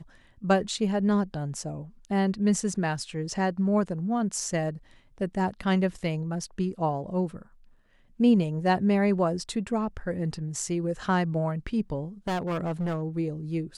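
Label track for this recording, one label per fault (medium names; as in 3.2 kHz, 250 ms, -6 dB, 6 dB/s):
12.270000	13.030000	clipped -25.5 dBFS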